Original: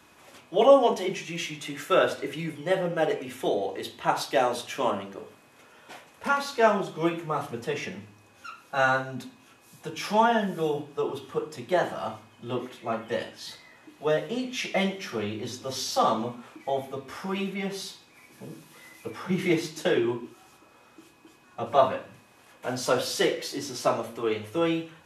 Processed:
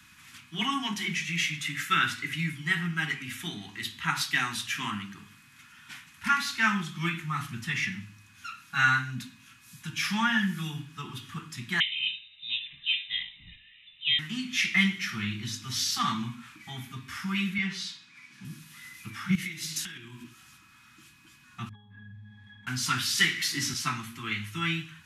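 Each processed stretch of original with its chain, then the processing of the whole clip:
0:11.80–0:14.19: phaser with its sweep stopped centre 1,000 Hz, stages 4 + voice inversion scrambler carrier 3,800 Hz
0:17.58–0:18.45: one scale factor per block 7 bits + band-pass filter 170–5,900 Hz
0:19.35–0:20.24: downward compressor 12 to 1, threshold −36 dBFS + high-shelf EQ 3,900 Hz +11.5 dB
0:21.69–0:22.67: gate with flip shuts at −17 dBFS, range −26 dB + resonances in every octave G#, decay 0.29 s + envelope flattener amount 70%
0:23.18–0:23.74: bass and treble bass 0 dB, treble +3 dB + multiband upward and downward compressor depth 70%
whole clip: Chebyshev band-stop filter 180–1,600 Hz, order 2; dynamic equaliser 2,000 Hz, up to +5 dB, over −47 dBFS, Q 3; level +4 dB

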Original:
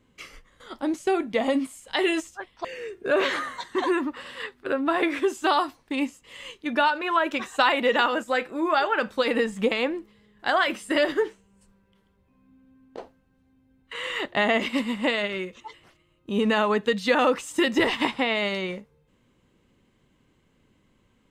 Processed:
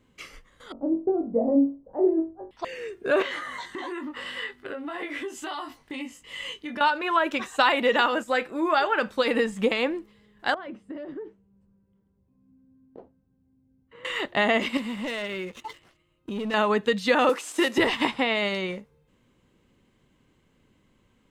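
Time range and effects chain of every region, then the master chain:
0:00.72–0:02.51: inverse Chebyshev low-pass filter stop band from 3,800 Hz, stop band 80 dB + flutter between parallel walls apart 3.7 metres, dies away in 0.31 s
0:03.22–0:06.81: double-tracking delay 20 ms −3 dB + downward compressor 4 to 1, threshold −33 dBFS + hollow resonant body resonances 2,000/3,000 Hz, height 10 dB, ringing for 25 ms
0:10.54–0:14.05: resonant band-pass 140 Hz, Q 0.65 + downward compressor, threshold −33 dBFS
0:14.77–0:16.54: leveller curve on the samples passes 2 + downward compressor 3 to 1, threshold −33 dBFS
0:17.29–0:17.78: variable-slope delta modulation 64 kbit/s + high-pass filter 280 Hz 24 dB per octave
whole clip: no processing

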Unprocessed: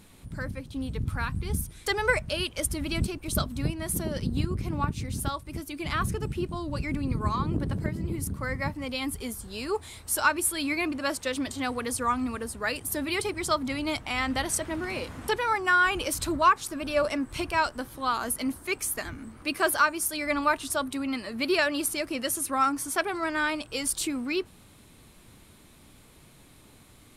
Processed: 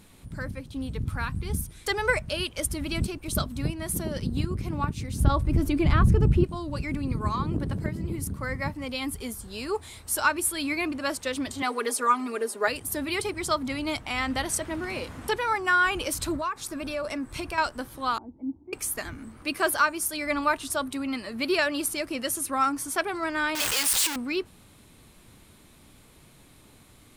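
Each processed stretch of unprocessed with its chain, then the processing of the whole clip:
0:05.20–0:06.44: spectral tilt −3 dB per octave + envelope flattener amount 50%
0:11.62–0:12.68: high-pass with resonance 410 Hz, resonance Q 1.8 + comb filter 4.9 ms, depth 85%
0:16.36–0:17.58: downward compressor 4 to 1, threshold −28 dBFS + notch filter 3,000 Hz, Q 15
0:18.18–0:18.73: formant resonators in series u + parametric band 90 Hz +7.5 dB 1.2 octaves
0:23.55–0:24.16: sign of each sample alone + tilt shelving filter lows −9 dB, about 650 Hz
whole clip: no processing

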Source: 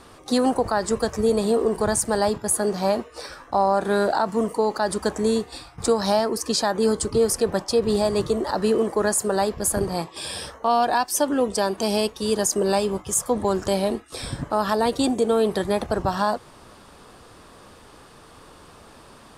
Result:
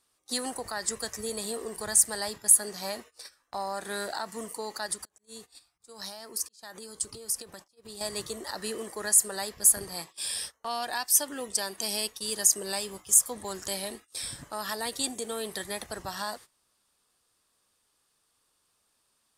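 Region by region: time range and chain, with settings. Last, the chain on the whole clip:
0:04.86–0:08.01: downward compressor 16 to 1, threshold −26 dBFS + volume swells 180 ms
whole clip: dynamic equaliser 1,900 Hz, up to +8 dB, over −50 dBFS, Q 4.5; noise gate −34 dBFS, range −18 dB; first-order pre-emphasis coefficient 0.9; level +2.5 dB

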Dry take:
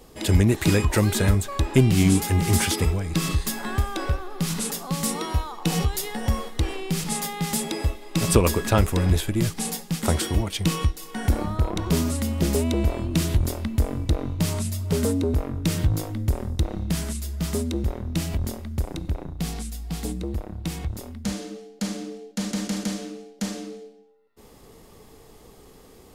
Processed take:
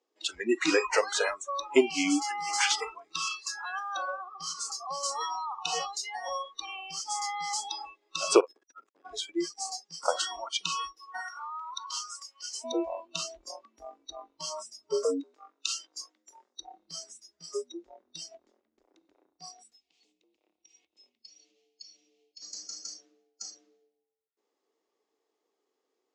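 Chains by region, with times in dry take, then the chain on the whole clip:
0:03.27–0:03.96: low-shelf EQ 350 Hz −9 dB + notch filter 1,100 Hz, Q 19 + multiband upward and downward compressor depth 40%
0:08.40–0:09.05: downward compressor 10 to 1, threshold −23 dBFS + saturating transformer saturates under 660 Hz
0:11.21–0:12.64: mu-law and A-law mismatch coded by mu + high-pass filter 1,100 Hz
0:15.20–0:16.57: high-pass filter 800 Hz 6 dB per octave + high-shelf EQ 2,300 Hz +4 dB
0:18.46–0:18.94: gain on one half-wave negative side −7 dB + high-shelf EQ 3,900 Hz −9.5 dB
0:19.77–0:22.42: running median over 3 samples + high shelf with overshoot 2,000 Hz +8.5 dB, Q 3 + downward compressor, threshold −36 dBFS
whole clip: noise reduction from a noise print of the clip's start 30 dB; elliptic band-pass filter 320–6,700 Hz, stop band 40 dB; level +1.5 dB

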